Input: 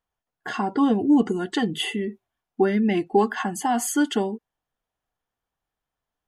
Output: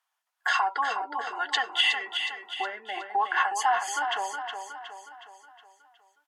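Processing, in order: low-pass that closes with the level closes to 1.1 kHz, closed at -17.5 dBFS; in parallel at +3 dB: peak limiter -20 dBFS, peak gain reduction 11.5 dB; on the sum: high-pass 850 Hz 24 dB/octave; feedback delay 366 ms, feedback 49%, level -7 dB

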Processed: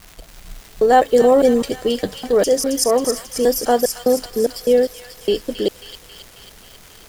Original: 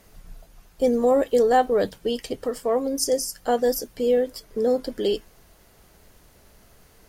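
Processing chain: slices played last to first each 203 ms, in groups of 4; crackle 490 per s -38 dBFS; feedback echo behind a high-pass 270 ms, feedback 65%, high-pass 1.9 kHz, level -6 dB; trim +6 dB

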